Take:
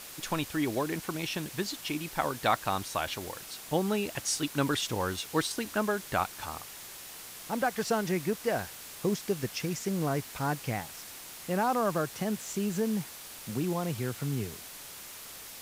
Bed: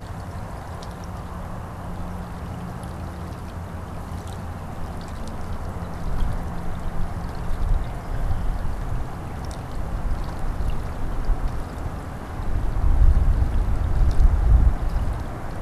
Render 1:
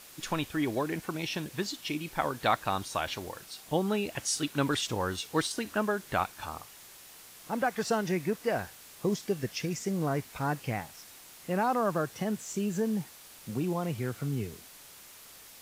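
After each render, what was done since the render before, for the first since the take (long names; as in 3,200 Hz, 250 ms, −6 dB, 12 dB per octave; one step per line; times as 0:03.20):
noise reduction from a noise print 6 dB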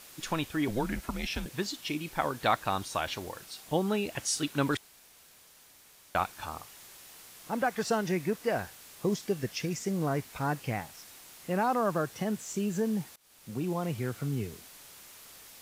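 0:00.68–0:01.46: frequency shifter −120 Hz
0:04.77–0:06.15: fill with room tone
0:13.16–0:13.94: fade in equal-power, from −24 dB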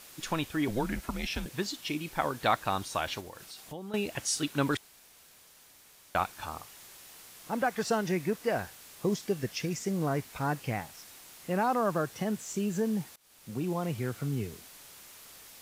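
0:03.20–0:03.94: downward compressor 3 to 1, threshold −42 dBFS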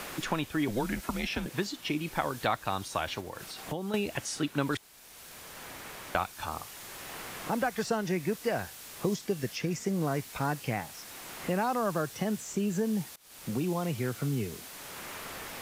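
multiband upward and downward compressor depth 70%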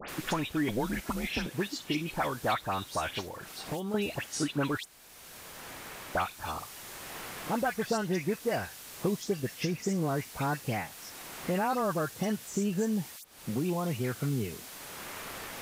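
all-pass dispersion highs, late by 88 ms, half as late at 2,400 Hz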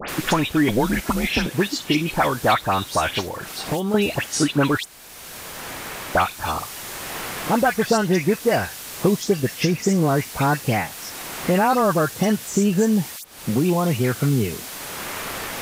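level +11.5 dB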